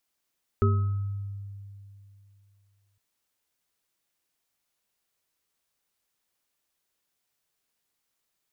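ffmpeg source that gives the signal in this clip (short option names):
-f lavfi -i "aevalsrc='0.119*pow(10,-3*t/2.78)*sin(2*PI*99.8*t)+0.0531*pow(10,-3*t/0.59)*sin(2*PI*226*t)+0.075*pow(10,-3*t/0.45)*sin(2*PI*397*t)+0.0398*pow(10,-3*t/0.87)*sin(2*PI*1280*t)':d=2.36:s=44100"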